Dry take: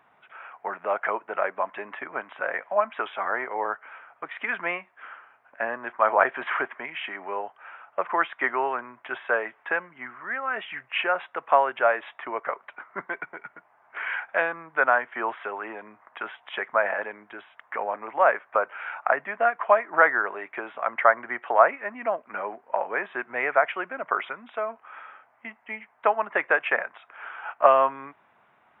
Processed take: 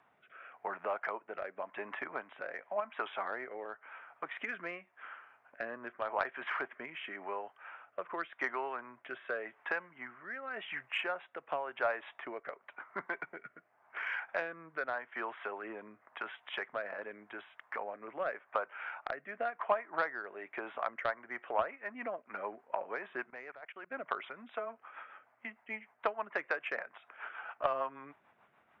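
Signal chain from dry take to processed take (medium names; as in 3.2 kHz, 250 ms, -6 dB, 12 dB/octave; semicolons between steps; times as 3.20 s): compression 2:1, threshold -32 dBFS, peak gain reduction 12 dB; Chebyshev shaper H 3 -17 dB, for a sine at -11.5 dBFS; 23.30–23.92 s: level held to a coarse grid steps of 23 dB; rotary cabinet horn 0.9 Hz, later 6.7 Hz, at 20.67 s; trim +1.5 dB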